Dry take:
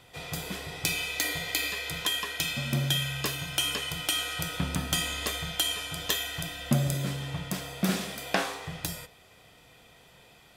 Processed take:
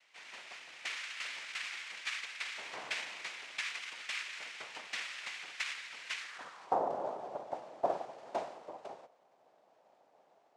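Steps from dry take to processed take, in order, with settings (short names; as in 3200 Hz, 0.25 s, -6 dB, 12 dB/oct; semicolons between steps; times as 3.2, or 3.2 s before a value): noise vocoder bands 2; band-pass sweep 2200 Hz -> 680 Hz, 6.19–6.83; gain -2 dB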